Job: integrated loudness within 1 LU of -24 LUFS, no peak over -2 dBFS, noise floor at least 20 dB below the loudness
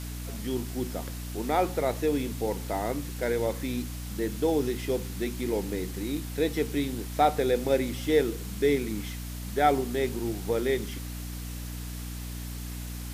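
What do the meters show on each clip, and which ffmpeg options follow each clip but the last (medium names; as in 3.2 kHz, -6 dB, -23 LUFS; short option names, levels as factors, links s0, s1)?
hum 60 Hz; highest harmonic 300 Hz; hum level -34 dBFS; noise floor -37 dBFS; noise floor target -50 dBFS; loudness -29.5 LUFS; peak level -9.5 dBFS; loudness target -24.0 LUFS
-> -af "bandreject=f=60:t=h:w=6,bandreject=f=120:t=h:w=6,bandreject=f=180:t=h:w=6,bandreject=f=240:t=h:w=6,bandreject=f=300:t=h:w=6"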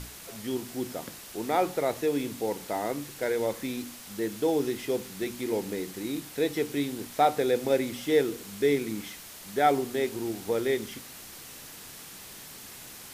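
hum not found; noise floor -46 dBFS; noise floor target -50 dBFS
-> -af "afftdn=nr=6:nf=-46"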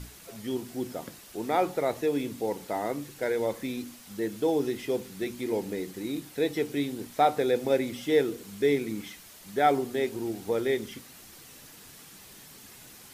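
noise floor -50 dBFS; loudness -29.5 LUFS; peak level -11.0 dBFS; loudness target -24.0 LUFS
-> -af "volume=1.88"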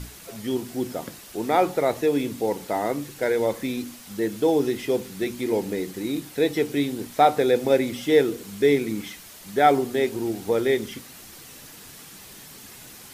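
loudness -24.0 LUFS; peak level -5.5 dBFS; noise floor -45 dBFS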